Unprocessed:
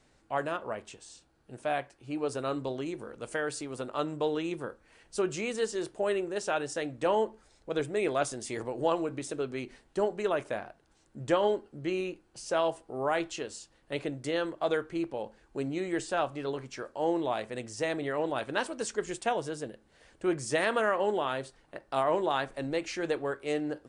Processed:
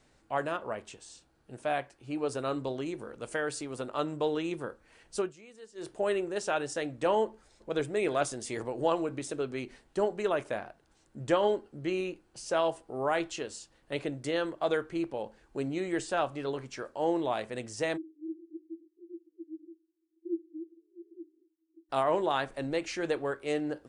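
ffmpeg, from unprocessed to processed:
-filter_complex "[0:a]asplit=2[a][b];[b]afade=t=in:st=7.25:d=0.01,afade=t=out:st=7.91:d=0.01,aecho=0:1:350|700:0.149624|0.0149624[c];[a][c]amix=inputs=2:normalize=0,asplit=3[d][e][f];[d]afade=t=out:st=17.96:d=0.02[g];[e]asuperpass=centerf=330:order=8:qfactor=7.6,afade=t=in:st=17.96:d=0.02,afade=t=out:st=21.89:d=0.02[h];[f]afade=t=in:st=21.89:d=0.02[i];[g][h][i]amix=inputs=3:normalize=0,asplit=3[j][k][l];[j]atrim=end=5.33,asetpts=PTS-STARTPTS,afade=t=out:st=5.18:d=0.15:silence=0.105925[m];[k]atrim=start=5.33:end=5.75,asetpts=PTS-STARTPTS,volume=-19.5dB[n];[l]atrim=start=5.75,asetpts=PTS-STARTPTS,afade=t=in:d=0.15:silence=0.105925[o];[m][n][o]concat=n=3:v=0:a=1"

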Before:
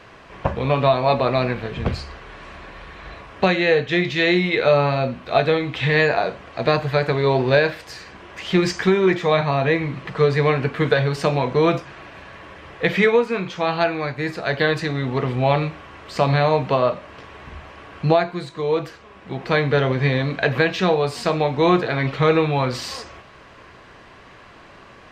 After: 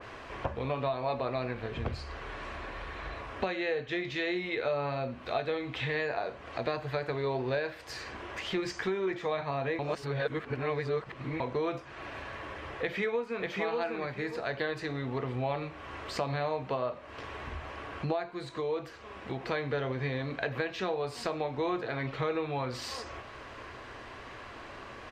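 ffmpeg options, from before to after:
-filter_complex "[0:a]asplit=2[a][b];[b]afade=t=in:st=12.8:d=0.01,afade=t=out:st=13.47:d=0.01,aecho=0:1:590|1180|1770:0.630957|0.126191|0.0252383[c];[a][c]amix=inputs=2:normalize=0,asplit=3[d][e][f];[d]atrim=end=9.792[g];[e]atrim=start=9.788:end=11.402,asetpts=PTS-STARTPTS,areverse[h];[f]atrim=start=11.398[i];[g][h]acrossfade=d=0.004:c1=hsin:c2=hsin[j];[j][i]acrossfade=d=0.004:c1=hsin:c2=hsin,equalizer=f=170:w=5.3:g=-15,acompressor=threshold=-36dB:ratio=2.5,adynamicequalizer=threshold=0.00447:dfrequency=2200:dqfactor=0.7:tfrequency=2200:tqfactor=0.7:attack=5:release=100:ratio=0.375:range=1.5:mode=cutabove:tftype=highshelf"

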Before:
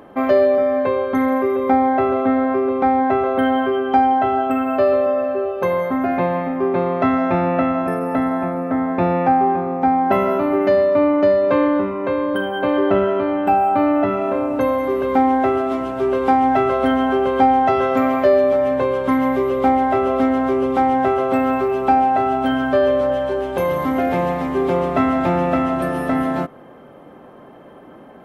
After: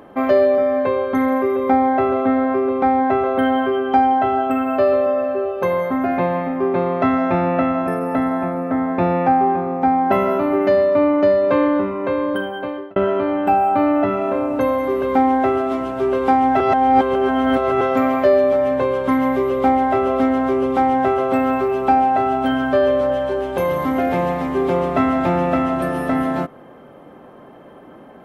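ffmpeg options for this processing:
-filter_complex "[0:a]asplit=4[a][b][c][d];[a]atrim=end=12.96,asetpts=PTS-STARTPTS,afade=t=out:st=12.29:d=0.67[e];[b]atrim=start=12.96:end=16.602,asetpts=PTS-STARTPTS,afade=t=in:d=0.004:c=hsin[f];[c]atrim=start=16.598:end=17.812,asetpts=PTS-STARTPTS,areverse[g];[d]atrim=start=17.808[h];[e][f]concat=n=2:v=0:a=1[i];[i][g]acrossfade=d=0.004:c1=hsin:c2=hsin[j];[j][h]acrossfade=d=0.004:c1=hsin:c2=hsin"

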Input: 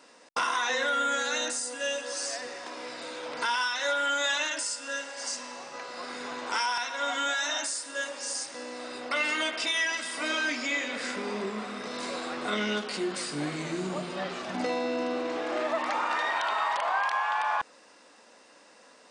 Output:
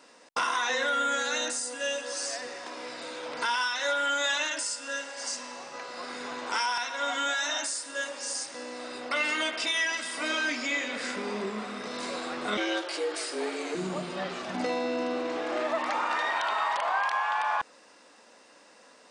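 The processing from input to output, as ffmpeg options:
-filter_complex "[0:a]asettb=1/sr,asplit=3[a][b][c];[a]atrim=end=12.574[d];[b]atrim=start=12.57:end=13.75,asetpts=PTS-STARTPTS,afade=t=in:d=0.004:c=qsin,afade=t=out:st=1.176:d=0.004:c=qsin,afreqshift=120[e];[c]atrim=start=13.746[f];[d][e]acrossfade=d=0.004:c1=hsin:c2=qsin[g];[g][f]acrossfade=d=0.004:c1=qsin:c2=hsin"

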